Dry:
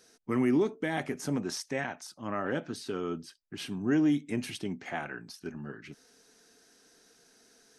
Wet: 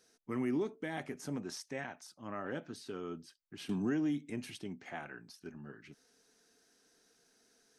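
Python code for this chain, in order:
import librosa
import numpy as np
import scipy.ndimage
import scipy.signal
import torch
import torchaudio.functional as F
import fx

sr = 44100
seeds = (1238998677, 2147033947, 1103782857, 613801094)

y = fx.band_squash(x, sr, depth_pct=100, at=(3.69, 4.3))
y = y * 10.0 ** (-8.0 / 20.0)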